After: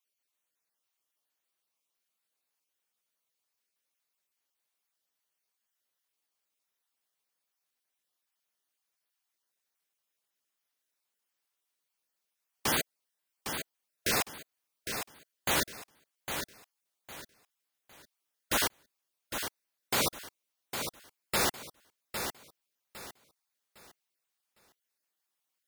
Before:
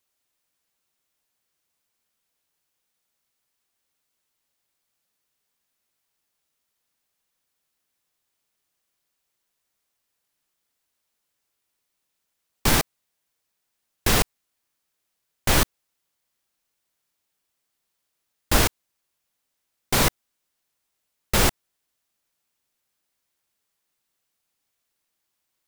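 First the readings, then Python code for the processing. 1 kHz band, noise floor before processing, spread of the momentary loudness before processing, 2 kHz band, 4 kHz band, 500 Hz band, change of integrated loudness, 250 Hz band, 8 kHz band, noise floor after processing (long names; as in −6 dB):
−7.0 dB, −79 dBFS, 7 LU, −6.0 dB, −6.5 dB, −7.5 dB, −10.0 dB, −10.5 dB, −6.5 dB, −85 dBFS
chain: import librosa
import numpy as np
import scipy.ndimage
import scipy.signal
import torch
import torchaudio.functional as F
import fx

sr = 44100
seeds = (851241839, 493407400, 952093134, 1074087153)

y = fx.spec_dropout(x, sr, seeds[0], share_pct=22)
y = fx.highpass(y, sr, hz=370.0, slope=6)
y = fx.notch(y, sr, hz=7400.0, q=25.0)
y = fx.echo_feedback(y, sr, ms=807, feedback_pct=30, wet_db=-7.5)
y = y * librosa.db_to_amplitude(-6.0)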